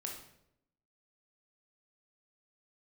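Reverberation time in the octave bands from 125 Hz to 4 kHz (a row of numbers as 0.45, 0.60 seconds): 0.90, 0.95, 0.85, 0.65, 0.60, 0.55 seconds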